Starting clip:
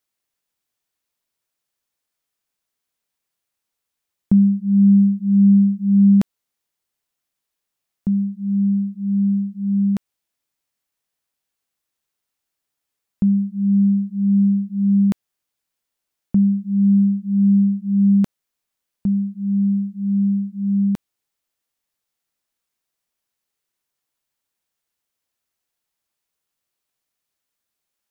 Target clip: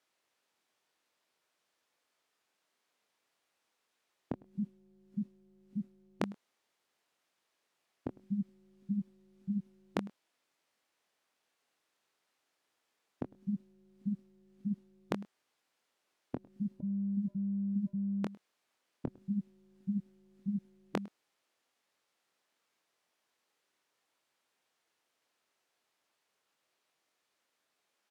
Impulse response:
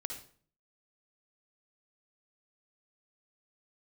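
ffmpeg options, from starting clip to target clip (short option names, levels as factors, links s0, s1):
-filter_complex "[0:a]alimiter=limit=0.133:level=0:latency=1:release=19,highpass=380,aemphasis=mode=reproduction:type=bsi,asplit=2[s0][s1];[s1]adelay=24,volume=0.376[s2];[s0][s2]amix=inputs=2:normalize=0,asettb=1/sr,asplit=3[s3][s4][s5];[s3]atrim=end=16.804[s6];[s4]atrim=start=16.8:end=19.08,asetpts=PTS-STARTPTS,afade=t=in:d=0.004:c=qsin,afade=t=out:st=2.276:d=0.004:c=qsin,acompressor=threshold=0.0282:ratio=6[s7];[s5]atrim=start=19.076[s8];[s6][s7]acrossfade=d=0.004:c1=hsin:c2=qsin[s9];[s9][s8]acrossfade=d=0.004:c1=qsin:c2=hsin,aecho=1:1:104:0.0708,afftfilt=real='re*lt(hypot(re,im),0.251)':imag='im*lt(hypot(re,im),0.251)':win_size=1024:overlap=0.75,volume=2.11"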